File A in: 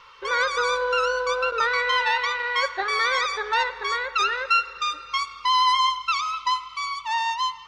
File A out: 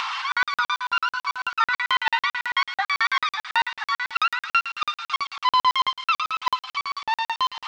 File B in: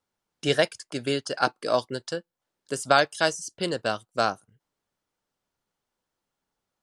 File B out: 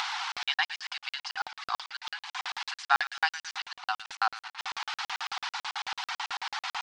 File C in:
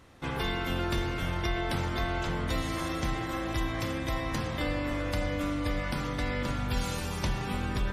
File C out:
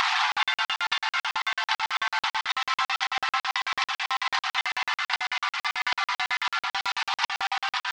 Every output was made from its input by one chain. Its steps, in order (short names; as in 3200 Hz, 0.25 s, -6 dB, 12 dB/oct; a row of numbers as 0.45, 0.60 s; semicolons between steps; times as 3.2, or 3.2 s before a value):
delta modulation 64 kbps, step -30 dBFS; LPF 4700 Hz 24 dB/oct; reverb removal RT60 0.51 s; upward compressor, threshold -25 dBFS; brick-wall FIR high-pass 720 Hz; thin delay 0.117 s, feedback 55%, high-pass 1800 Hz, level -10 dB; crackling interface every 0.11 s, samples 2048, zero, from 0.32; normalise peaks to -9 dBFS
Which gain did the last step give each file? +2.5, +0.5, +10.5 dB